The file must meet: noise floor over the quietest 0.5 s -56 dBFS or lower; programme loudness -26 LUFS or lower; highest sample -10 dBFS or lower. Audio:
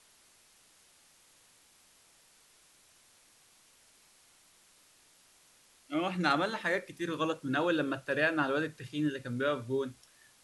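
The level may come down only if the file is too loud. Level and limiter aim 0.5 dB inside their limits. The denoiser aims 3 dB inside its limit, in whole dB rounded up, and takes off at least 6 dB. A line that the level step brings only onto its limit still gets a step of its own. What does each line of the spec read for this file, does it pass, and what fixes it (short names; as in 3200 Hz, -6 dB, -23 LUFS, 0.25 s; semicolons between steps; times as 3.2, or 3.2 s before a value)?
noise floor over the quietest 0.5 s -64 dBFS: OK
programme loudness -32.5 LUFS: OK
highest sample -13.5 dBFS: OK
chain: none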